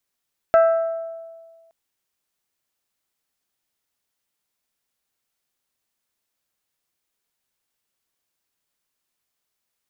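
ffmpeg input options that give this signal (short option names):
-f lavfi -i "aevalsrc='0.335*pow(10,-3*t/1.6)*sin(2*PI*660*t)+0.119*pow(10,-3*t/0.985)*sin(2*PI*1320*t)+0.0422*pow(10,-3*t/0.867)*sin(2*PI*1584*t)+0.015*pow(10,-3*t/0.742)*sin(2*PI*1980*t)+0.00531*pow(10,-3*t/0.606)*sin(2*PI*2640*t)':d=1.17:s=44100"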